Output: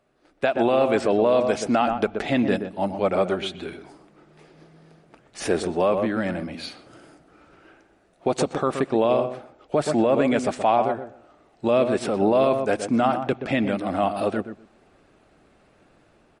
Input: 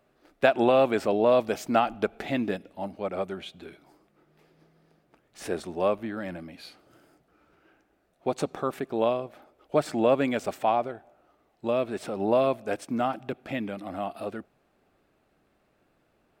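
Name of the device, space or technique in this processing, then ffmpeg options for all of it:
low-bitrate web radio: -filter_complex "[0:a]asettb=1/sr,asplit=3[s0][s1][s2];[s0]atrim=end=9.754[s3];[s1]atrim=start=9.75:end=10.51,asetpts=PTS-STARTPTS,afade=t=in:d=0.004:c=qsin,afade=t=out:st=0.756:d=0.004:c=qsin,equalizer=f=3600:t=o:w=2.1:g=-2.5[s4];[s2]atrim=start=10.506[s5];[s3][s4]acrossfade=d=0.004:c1=hsin:c2=qsin[s6];[s6][s5]acrossfade=d=0.004:c1=qsin:c2=hsin,asplit=2[s7][s8];[s8]adelay=124,lowpass=f=1100:p=1,volume=0.376,asplit=2[s9][s10];[s10]adelay=124,lowpass=f=1100:p=1,volume=0.17,asplit=2[s11][s12];[s12]adelay=124,lowpass=f=1100:p=1,volume=0.17[s13];[s7][s9][s11][s13]amix=inputs=4:normalize=0,dynaudnorm=f=240:g=5:m=3.35,alimiter=limit=0.335:level=0:latency=1:release=34" -ar 44100 -c:a libmp3lame -b:a 48k

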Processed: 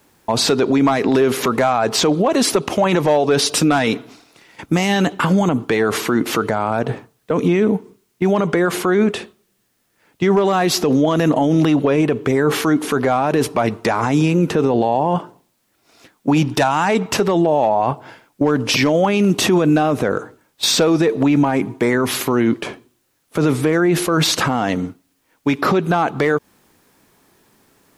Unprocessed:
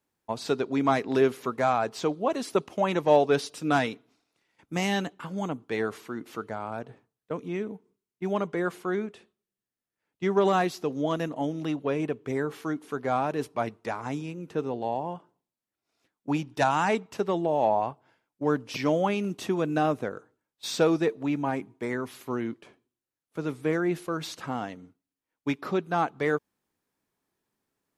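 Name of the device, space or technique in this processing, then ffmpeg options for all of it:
loud club master: -af "acompressor=threshold=0.0398:ratio=2.5,asoftclip=type=hard:threshold=0.0944,alimiter=level_in=39.8:limit=0.891:release=50:level=0:latency=1,volume=0.473"

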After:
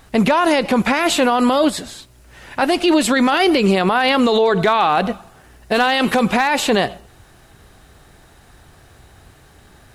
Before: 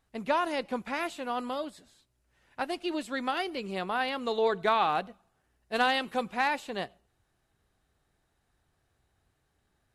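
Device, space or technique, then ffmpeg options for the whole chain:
loud club master: -af "acompressor=threshold=0.0316:ratio=2,asoftclip=type=hard:threshold=0.0841,alimiter=level_in=44.7:limit=0.891:release=50:level=0:latency=1,volume=0.501"

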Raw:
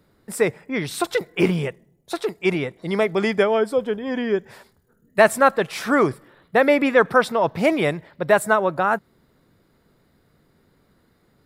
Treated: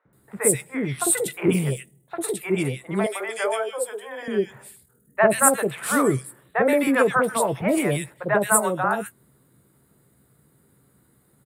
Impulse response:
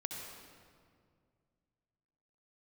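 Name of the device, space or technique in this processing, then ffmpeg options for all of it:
budget condenser microphone: -filter_complex "[0:a]highpass=62,equalizer=f=130:t=o:w=0.4:g=6,highshelf=f=6900:t=q:w=3:g=9,asplit=2[s0][s1];[s1]adelay=15,volume=0.282[s2];[s0][s2]amix=inputs=2:normalize=0,asettb=1/sr,asplit=3[s3][s4][s5];[s3]atrim=end=3.014[s6];[s4]atrim=start=3.01:end=4.23,asetpts=PTS-STARTPTS,afade=t=in:d=0.004:c=qsin,afade=t=out:st=1.216:d=0.004:c=qsin,highpass=f=500:w=0.5412,highpass=f=500:w=1.3066[s7];[s5]atrim=start=4.226[s8];[s6][s7]acrossfade=d=0.004:c1=hsin:c2=qsin[s9];[s9][s8]acrossfade=d=0.004:c1=qsin:c2=hsin,acrossover=split=630|2300[s10][s11][s12];[s10]adelay=50[s13];[s12]adelay=130[s14];[s13][s11][s14]amix=inputs=3:normalize=0,volume=0.891"

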